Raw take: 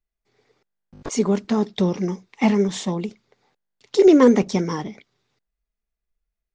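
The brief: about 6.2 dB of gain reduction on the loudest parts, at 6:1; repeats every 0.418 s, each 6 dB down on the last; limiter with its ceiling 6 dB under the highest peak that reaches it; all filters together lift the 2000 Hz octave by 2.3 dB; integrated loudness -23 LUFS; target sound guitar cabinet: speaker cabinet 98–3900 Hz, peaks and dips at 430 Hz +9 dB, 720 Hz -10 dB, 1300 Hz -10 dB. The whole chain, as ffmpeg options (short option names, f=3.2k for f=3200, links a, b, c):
-af "equalizer=f=2k:t=o:g=4,acompressor=threshold=-15dB:ratio=6,alimiter=limit=-13.5dB:level=0:latency=1,highpass=98,equalizer=f=430:t=q:w=4:g=9,equalizer=f=720:t=q:w=4:g=-10,equalizer=f=1.3k:t=q:w=4:g=-10,lowpass=f=3.9k:w=0.5412,lowpass=f=3.9k:w=1.3066,aecho=1:1:418|836|1254|1672|2090|2508:0.501|0.251|0.125|0.0626|0.0313|0.0157,volume=-0.5dB"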